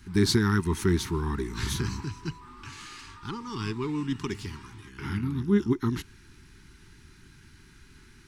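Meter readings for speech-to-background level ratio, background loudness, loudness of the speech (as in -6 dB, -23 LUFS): 20.0 dB, -49.0 LUFS, -29.0 LUFS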